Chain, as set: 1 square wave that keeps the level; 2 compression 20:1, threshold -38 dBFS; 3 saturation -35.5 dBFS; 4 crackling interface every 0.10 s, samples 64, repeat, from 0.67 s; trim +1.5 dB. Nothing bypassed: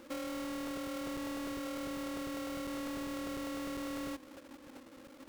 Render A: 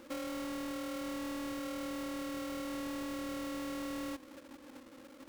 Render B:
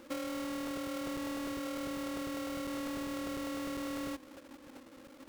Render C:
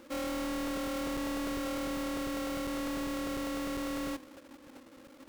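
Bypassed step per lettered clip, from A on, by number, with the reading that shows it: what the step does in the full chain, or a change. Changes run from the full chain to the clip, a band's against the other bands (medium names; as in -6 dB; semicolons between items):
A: 4, 125 Hz band -2.5 dB; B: 3, distortion -24 dB; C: 2, mean gain reduction 8.0 dB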